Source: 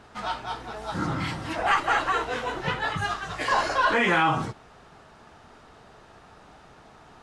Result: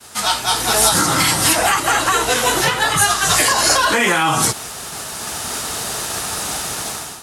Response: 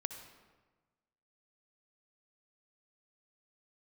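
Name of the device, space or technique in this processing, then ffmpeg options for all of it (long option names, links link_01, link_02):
FM broadcast chain: -filter_complex "[0:a]agate=range=-33dB:threshold=-49dB:ratio=3:detection=peak,highpass=53,dynaudnorm=framelen=430:gausssize=3:maxgain=16dB,acrossover=split=330|1500[link_01][link_02][link_03];[link_01]acompressor=threshold=-28dB:ratio=4[link_04];[link_02]acompressor=threshold=-21dB:ratio=4[link_05];[link_03]acompressor=threshold=-31dB:ratio=4[link_06];[link_04][link_05][link_06]amix=inputs=3:normalize=0,aemphasis=mode=production:type=75fm,alimiter=limit=-14.5dB:level=0:latency=1:release=253,asoftclip=type=hard:threshold=-16dB,lowpass=frequency=15000:width=0.5412,lowpass=frequency=15000:width=1.3066,aemphasis=mode=production:type=75fm,volume=7.5dB"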